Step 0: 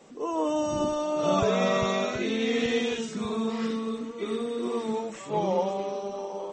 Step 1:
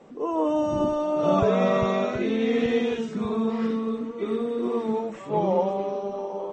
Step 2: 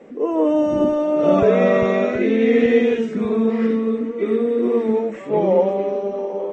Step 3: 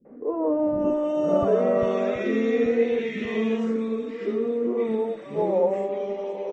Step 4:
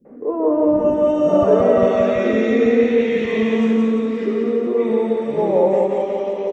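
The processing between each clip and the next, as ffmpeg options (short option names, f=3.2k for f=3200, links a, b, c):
-af "lowpass=f=1.3k:p=1,volume=4dB"
-af "equalizer=f=125:t=o:w=1:g=-3,equalizer=f=250:t=o:w=1:g=7,equalizer=f=500:t=o:w=1:g=8,equalizer=f=1k:t=o:w=1:g=-4,equalizer=f=2k:t=o:w=1:g=10,equalizer=f=4k:t=o:w=1:g=-3"
-filter_complex "[0:a]acrossover=split=240|1600[a][b][c];[b]adelay=50[d];[c]adelay=590[e];[a][d][e]amix=inputs=3:normalize=0,volume=-5dB"
-af "aecho=1:1:175|350|525|700|875|1050|1225:0.708|0.368|0.191|0.0995|0.0518|0.0269|0.014,volume=5dB"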